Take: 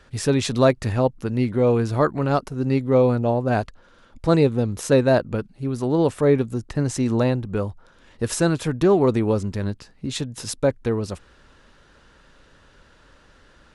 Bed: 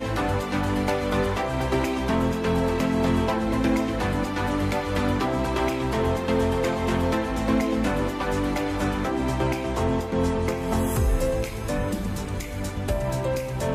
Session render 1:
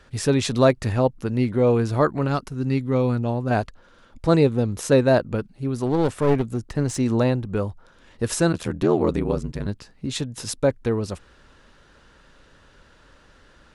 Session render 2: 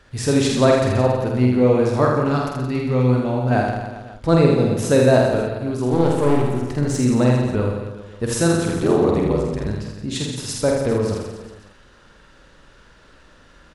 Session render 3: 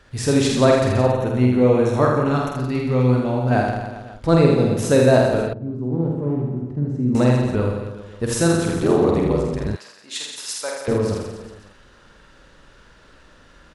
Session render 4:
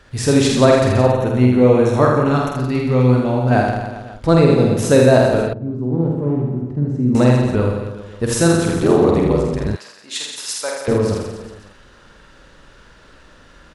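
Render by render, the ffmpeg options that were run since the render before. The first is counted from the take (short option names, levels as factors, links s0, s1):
-filter_complex "[0:a]asettb=1/sr,asplit=3[s0][s1][s2];[s0]atrim=end=2.274[s3];[s1]atrim=start=2.27:end=3.51,asetpts=PTS-STARTPTS,afade=t=in:d=0.004:c=qsin,afade=t=out:st=1.236:d=0.004:c=qsin,equalizer=f=590:t=o:w=1.4:g=-7.5[s4];[s2]atrim=start=3.506[s5];[s3][s4]acrossfade=d=0.004:c1=hsin:c2=qsin[s6];[s6][s5]acrossfade=d=0.004:c1=qsin:c2=hsin,asplit=3[s7][s8][s9];[s7]afade=t=out:st=5.85:d=0.02[s10];[s8]aeval=exprs='clip(val(0),-1,0.0631)':c=same,afade=t=in:st=5.85:d=0.02,afade=t=out:st=6.94:d=0.02[s11];[s9]afade=t=in:st=6.94:d=0.02[s12];[s10][s11][s12]amix=inputs=3:normalize=0,asplit=3[s13][s14][s15];[s13]afade=t=out:st=8.52:d=0.02[s16];[s14]aeval=exprs='val(0)*sin(2*PI*41*n/s)':c=same,afade=t=in:st=8.52:d=0.02,afade=t=out:st=9.66:d=0.02[s17];[s15]afade=t=in:st=9.66:d=0.02[s18];[s16][s17][s18]amix=inputs=3:normalize=0"
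-filter_complex "[0:a]asplit=2[s0][s1];[s1]adelay=48,volume=0.631[s2];[s0][s2]amix=inputs=2:normalize=0,aecho=1:1:80|172|277.8|399.5|539.4:0.631|0.398|0.251|0.158|0.1"
-filter_complex "[0:a]asettb=1/sr,asplit=3[s0][s1][s2];[s0]atrim=end=1.114[s3];[s1]atrim=start=1.11:end=2.57,asetpts=PTS-STARTPTS,afade=t=in:d=0.004:c=qsin,afade=t=out:st=1.456:d=0.004:c=qsin,asuperstop=centerf=4800:order=8:qfactor=5.3[s4];[s2]atrim=start=2.566[s5];[s3][s4]acrossfade=d=0.004:c1=hsin:c2=qsin[s6];[s6][s5]acrossfade=d=0.004:c1=qsin:c2=hsin,asettb=1/sr,asplit=3[s7][s8][s9];[s7]atrim=end=5.534[s10];[s8]atrim=start=5.53:end=7.15,asetpts=PTS-STARTPTS,afade=t=in:d=0.004:c=qsin,afade=t=out:st=1.616:d=0.004:c=qsin,bandpass=f=170:t=q:w=1.1[s11];[s9]atrim=start=7.146[s12];[s10][s11]acrossfade=d=0.004:c1=hsin:c2=qsin[s13];[s13][s12]acrossfade=d=0.004:c1=qsin:c2=hsin,asettb=1/sr,asplit=3[s14][s15][s16];[s14]atrim=end=9.764[s17];[s15]atrim=start=9.76:end=10.88,asetpts=PTS-STARTPTS,afade=t=in:d=0.004:c=qsin,afade=t=out:st=1.116:d=0.004:c=qsin,highpass=940[s18];[s16]atrim=start=10.876[s19];[s17][s18]acrossfade=d=0.004:c1=hsin:c2=qsin[s20];[s20][s19]acrossfade=d=0.004:c1=qsin:c2=hsin"
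-af "volume=1.5,alimiter=limit=0.891:level=0:latency=1"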